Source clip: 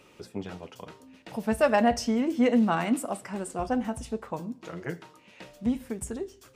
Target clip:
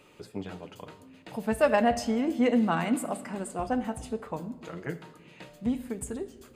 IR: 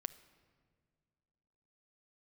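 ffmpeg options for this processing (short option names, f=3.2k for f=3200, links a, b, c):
-filter_complex "[0:a]bandreject=f=5.6k:w=6.3[a];[1:a]atrim=start_sample=2205[b];[a][b]afir=irnorm=-1:irlink=0,volume=1.5dB"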